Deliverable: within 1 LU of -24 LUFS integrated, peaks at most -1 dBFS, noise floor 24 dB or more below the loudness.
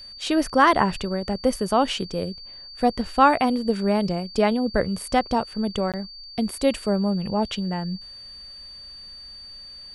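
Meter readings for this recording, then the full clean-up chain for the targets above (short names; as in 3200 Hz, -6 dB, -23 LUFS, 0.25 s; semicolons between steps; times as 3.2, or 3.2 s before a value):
dropouts 1; longest dropout 17 ms; steady tone 4600 Hz; tone level -39 dBFS; loudness -23.0 LUFS; peak -3.5 dBFS; loudness target -24.0 LUFS
-> interpolate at 5.92, 17 ms; notch 4600 Hz, Q 30; gain -1 dB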